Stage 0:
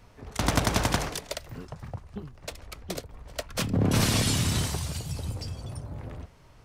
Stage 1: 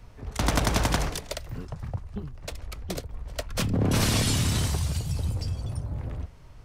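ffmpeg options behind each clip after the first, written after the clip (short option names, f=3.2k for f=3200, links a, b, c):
-filter_complex "[0:a]lowshelf=f=110:g=10.5,acrossover=split=260[a][b];[a]alimiter=limit=-20.5dB:level=0:latency=1[c];[c][b]amix=inputs=2:normalize=0"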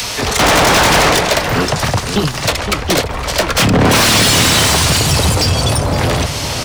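-filter_complex "[0:a]acrossover=split=120|760|3300[a][b][c][d];[d]acompressor=mode=upward:threshold=-39dB:ratio=2.5[e];[a][b][c][e]amix=inputs=4:normalize=0,asplit=2[f][g];[g]highpass=f=720:p=1,volume=36dB,asoftclip=type=tanh:threshold=-7dB[h];[f][h]amix=inputs=2:normalize=0,lowpass=f=5.1k:p=1,volume=-6dB,asplit=2[i][j];[j]adelay=513.1,volume=-8dB,highshelf=f=4k:g=-11.5[k];[i][k]amix=inputs=2:normalize=0,volume=4.5dB"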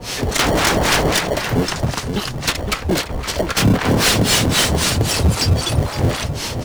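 -filter_complex "[0:a]acrossover=split=810[a][b];[a]aeval=exprs='val(0)*(1-1/2+1/2*cos(2*PI*3.8*n/s))':c=same[c];[b]aeval=exprs='val(0)*(1-1/2-1/2*cos(2*PI*3.8*n/s))':c=same[d];[c][d]amix=inputs=2:normalize=0,asplit=2[e][f];[f]acrusher=samples=35:mix=1:aa=0.000001,volume=-6.5dB[g];[e][g]amix=inputs=2:normalize=0,volume=-2dB"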